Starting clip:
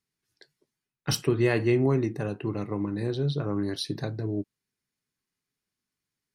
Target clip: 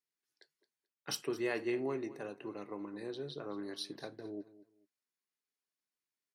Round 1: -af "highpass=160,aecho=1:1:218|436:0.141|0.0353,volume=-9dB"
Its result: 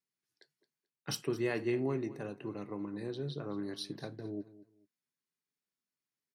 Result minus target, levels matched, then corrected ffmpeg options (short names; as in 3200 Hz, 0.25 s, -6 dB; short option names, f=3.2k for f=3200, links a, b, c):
125 Hz band +8.5 dB
-af "highpass=330,aecho=1:1:218|436:0.141|0.0353,volume=-9dB"